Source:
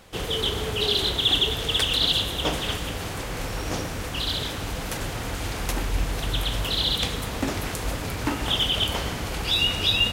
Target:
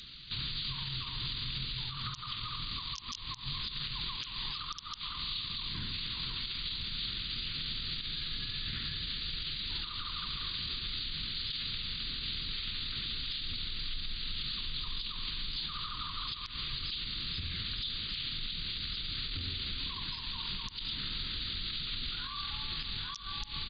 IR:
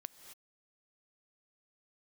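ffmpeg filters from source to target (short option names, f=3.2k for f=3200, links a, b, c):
-filter_complex "[0:a]acrossover=split=730|6100[a][b][c];[b]aeval=exprs='(mod(4.22*val(0)+1,2)-1)/4.22':c=same[d];[a][d][c]amix=inputs=3:normalize=0,highshelf=f=3.1k:t=q:w=3:g=10,asetrate=18846,aresample=44100,acompressor=threshold=-21dB:ratio=2.5,asetrate=31183,aresample=44100,atempo=1.41421,firequalizer=gain_entry='entry(120,0);entry(870,-24);entry(3600,13)':delay=0.05:min_phase=1,alimiter=limit=-24dB:level=0:latency=1:release=180,volume=-3.5dB"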